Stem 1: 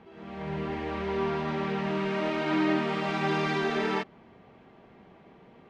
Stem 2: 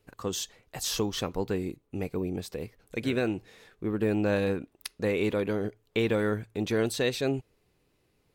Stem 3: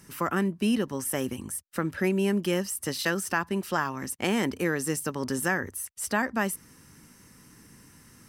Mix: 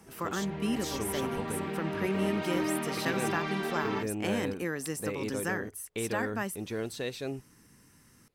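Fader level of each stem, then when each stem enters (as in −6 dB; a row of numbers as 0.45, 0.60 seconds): −5.5, −8.0, −6.5 decibels; 0.00, 0.00, 0.00 seconds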